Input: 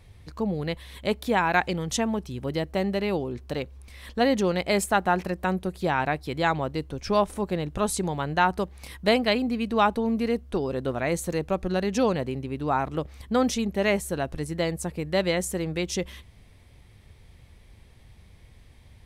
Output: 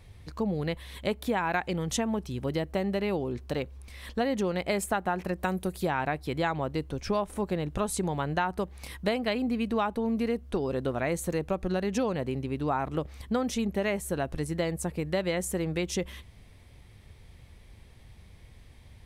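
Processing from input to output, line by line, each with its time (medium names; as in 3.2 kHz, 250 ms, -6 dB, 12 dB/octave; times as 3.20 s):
5.43–5.86 s: treble shelf 4.9 kHz -> 8.7 kHz +12 dB
whole clip: dynamic bell 4.9 kHz, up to -4 dB, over -46 dBFS, Q 1.1; compression, threshold -24 dBFS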